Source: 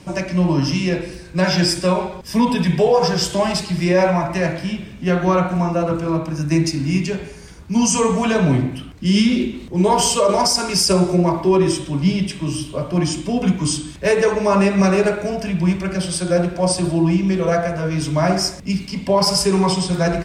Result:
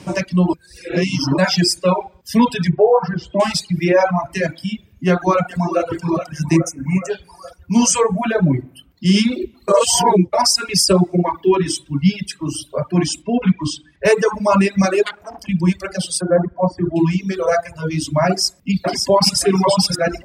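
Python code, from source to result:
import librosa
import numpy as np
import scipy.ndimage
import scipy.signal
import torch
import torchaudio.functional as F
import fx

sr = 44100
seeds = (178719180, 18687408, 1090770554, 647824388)

y = fx.lowpass(x, sr, hz=1600.0, slope=12, at=(2.69, 3.4))
y = fx.echo_throw(y, sr, start_s=5.06, length_s=0.79, ms=420, feedback_pct=65, wet_db=-7.5)
y = fx.cheby1_bandstop(y, sr, low_hz=2400.0, high_hz=5900.0, order=3, at=(6.56, 7.09), fade=0.02)
y = fx.peak_eq(y, sr, hz=4000.0, db=-7.5, octaves=1.5, at=(8.03, 8.91))
y = fx.peak_eq(y, sr, hz=610.0, db=-9.0, octaves=0.26, at=(11.27, 12.59))
y = fx.lowpass(y, sr, hz=4100.0, slope=12, at=(13.22, 14.05))
y = fx.transformer_sat(y, sr, knee_hz=2500.0, at=(15.03, 15.49))
y = fx.savgol(y, sr, points=41, at=(16.21, 16.96))
y = fx.echo_throw(y, sr, start_s=18.27, length_s=1.11, ms=570, feedback_pct=55, wet_db=-3.0)
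y = fx.edit(y, sr, fx.reverse_span(start_s=0.53, length_s=0.85),
    fx.reverse_span(start_s=9.68, length_s=0.65), tone=tone)
y = fx.dereverb_blind(y, sr, rt60_s=1.8)
y = scipy.signal.sosfilt(scipy.signal.butter(2, 74.0, 'highpass', fs=sr, output='sos'), y)
y = fx.dereverb_blind(y, sr, rt60_s=1.7)
y = y * 10.0 ** (3.5 / 20.0)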